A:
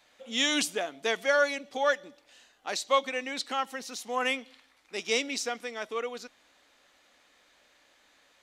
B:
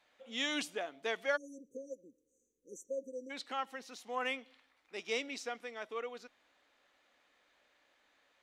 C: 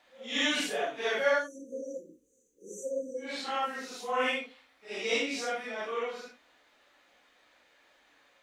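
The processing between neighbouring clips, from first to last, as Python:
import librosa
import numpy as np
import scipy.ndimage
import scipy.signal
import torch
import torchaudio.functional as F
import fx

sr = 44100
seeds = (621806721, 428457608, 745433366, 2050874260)

y1 = fx.spec_erase(x, sr, start_s=1.36, length_s=1.94, low_hz=540.0, high_hz=5800.0)
y1 = fx.bass_treble(y1, sr, bass_db=-4, treble_db=-8)
y1 = F.gain(torch.from_numpy(y1), -7.0).numpy()
y2 = fx.phase_scramble(y1, sr, seeds[0], window_ms=200)
y2 = F.gain(torch.from_numpy(y2), 7.5).numpy()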